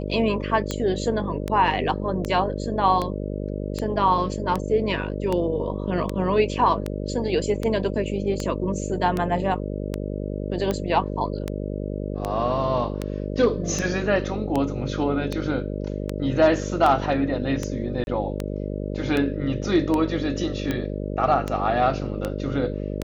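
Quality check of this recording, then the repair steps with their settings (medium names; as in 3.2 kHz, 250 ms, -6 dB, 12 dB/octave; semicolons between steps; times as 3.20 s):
buzz 50 Hz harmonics 12 -29 dBFS
tick 78 rpm -12 dBFS
18.04–18.07 s: dropout 31 ms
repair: de-click; de-hum 50 Hz, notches 12; interpolate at 18.04 s, 31 ms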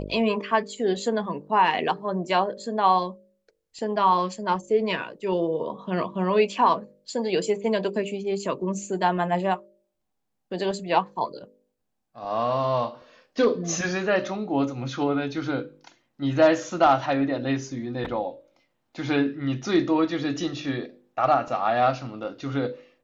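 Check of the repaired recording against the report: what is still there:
nothing left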